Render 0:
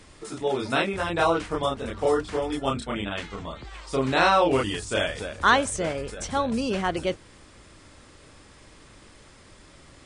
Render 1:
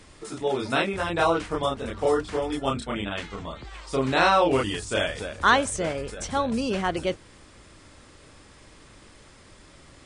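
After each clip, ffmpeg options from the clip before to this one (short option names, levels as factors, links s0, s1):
-af anull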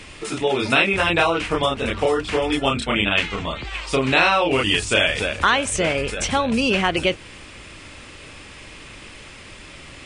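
-af "acompressor=threshold=0.0562:ratio=4,equalizer=f=2600:t=o:w=0.75:g=11,volume=2.51"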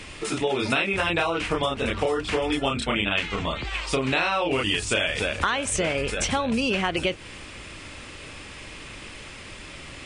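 -af "acompressor=threshold=0.0794:ratio=3"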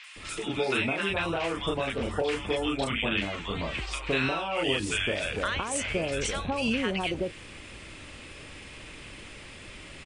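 -filter_complex "[0:a]acrossover=split=1100|5600[s0][s1][s2];[s2]adelay=40[s3];[s0]adelay=160[s4];[s4][s1][s3]amix=inputs=3:normalize=0,volume=0.668"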